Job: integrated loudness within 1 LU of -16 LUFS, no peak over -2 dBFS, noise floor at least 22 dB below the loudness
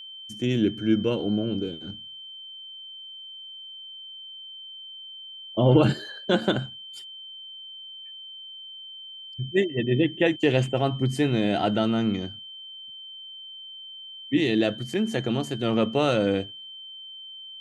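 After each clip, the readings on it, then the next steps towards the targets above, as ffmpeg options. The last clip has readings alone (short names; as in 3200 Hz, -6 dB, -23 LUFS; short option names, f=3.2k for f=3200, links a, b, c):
steady tone 3100 Hz; tone level -39 dBFS; loudness -24.5 LUFS; peak -6.5 dBFS; loudness target -16.0 LUFS
-> -af "bandreject=f=3.1k:w=30"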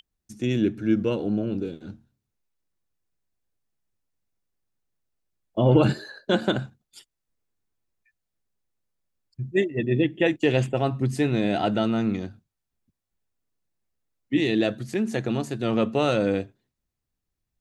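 steady tone none; loudness -24.5 LUFS; peak -6.5 dBFS; loudness target -16.0 LUFS
-> -af "volume=8.5dB,alimiter=limit=-2dB:level=0:latency=1"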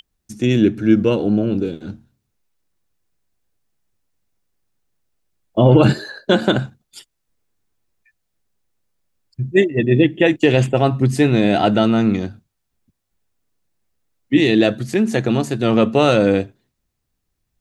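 loudness -16.5 LUFS; peak -2.0 dBFS; noise floor -75 dBFS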